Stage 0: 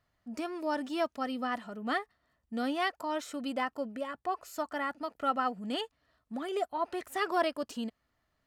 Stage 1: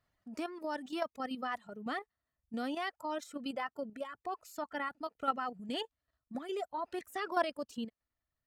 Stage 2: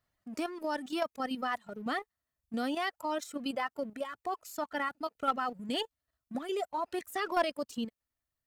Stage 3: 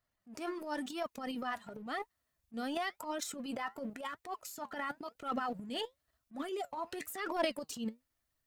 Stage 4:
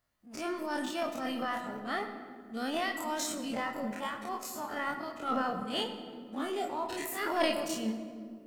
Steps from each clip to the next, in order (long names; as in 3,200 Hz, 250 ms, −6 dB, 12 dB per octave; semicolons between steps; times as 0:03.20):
reverb reduction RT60 1.3 s; output level in coarse steps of 9 dB
high-shelf EQ 6,300 Hz +5.5 dB; leveller curve on the samples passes 1
transient designer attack −9 dB, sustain +9 dB; flanger 0.95 Hz, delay 2.5 ms, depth 6.8 ms, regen +72%; level +1 dB
every bin's largest magnitude spread in time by 60 ms; on a send at −6.5 dB: convolution reverb RT60 2.2 s, pre-delay 19 ms